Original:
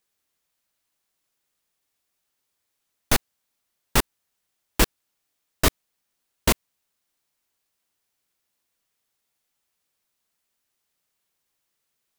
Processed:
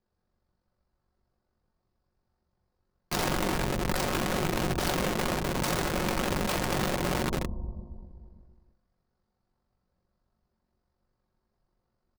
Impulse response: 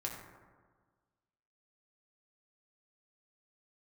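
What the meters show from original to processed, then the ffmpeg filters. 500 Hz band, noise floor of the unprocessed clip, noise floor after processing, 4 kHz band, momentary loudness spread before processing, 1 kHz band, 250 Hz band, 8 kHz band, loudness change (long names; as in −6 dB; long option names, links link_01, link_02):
+2.5 dB, −78 dBFS, −81 dBFS, −3.0 dB, 3 LU, +2.0 dB, +2.5 dB, −5.5 dB, −4.5 dB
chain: -filter_complex "[1:a]atrim=start_sample=2205,asetrate=28224,aresample=44100[link_01];[0:a][link_01]afir=irnorm=-1:irlink=0,asplit=2[link_02][link_03];[link_03]acompressor=threshold=-32dB:ratio=8,volume=0dB[link_04];[link_02][link_04]amix=inputs=2:normalize=0,asoftclip=type=tanh:threshold=-5.5dB,acrossover=split=1900[link_05][link_06];[link_05]alimiter=limit=-19.5dB:level=0:latency=1:release=319[link_07];[link_06]bandpass=frequency=4700:width_type=q:width=4.8:csg=0[link_08];[link_07][link_08]amix=inputs=2:normalize=0,aemphasis=mode=reproduction:type=riaa,aeval=exprs='(mod(7.94*val(0)+1,2)-1)/7.94':channel_layout=same,tremolo=f=47:d=0.519,aecho=1:1:5.5:0.32,volume=-4dB"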